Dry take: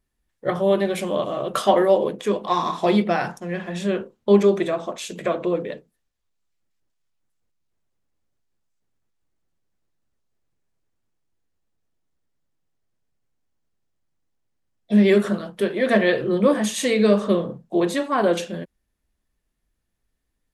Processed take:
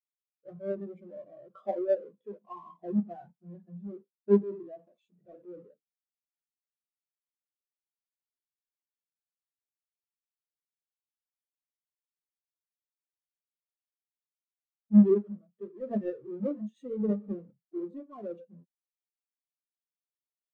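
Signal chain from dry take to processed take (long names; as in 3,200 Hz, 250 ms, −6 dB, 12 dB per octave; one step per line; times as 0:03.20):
each half-wave held at its own peak
0:04.38–0:05.67: transient designer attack −12 dB, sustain +3 dB
in parallel at −5 dB: wave folding −22 dBFS
on the sum: every bin expanded away from the loudest bin 2.5 to 1
level −6 dB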